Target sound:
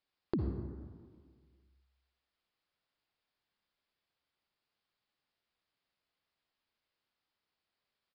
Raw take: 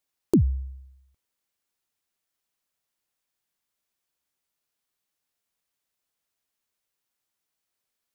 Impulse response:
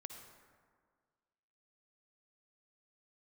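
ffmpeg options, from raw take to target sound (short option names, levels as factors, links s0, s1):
-filter_complex "[0:a]acompressor=threshold=0.0158:ratio=3,aresample=11025,aresample=44100[s0];[1:a]atrim=start_sample=2205[s1];[s0][s1]afir=irnorm=-1:irlink=0,volume=1.78"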